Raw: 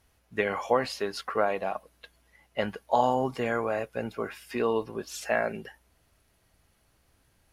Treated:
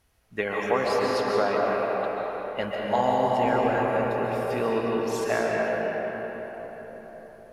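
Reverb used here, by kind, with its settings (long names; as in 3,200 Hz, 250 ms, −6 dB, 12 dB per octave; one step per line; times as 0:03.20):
comb and all-pass reverb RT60 4.9 s, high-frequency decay 0.5×, pre-delay 100 ms, DRR −3.5 dB
level −1 dB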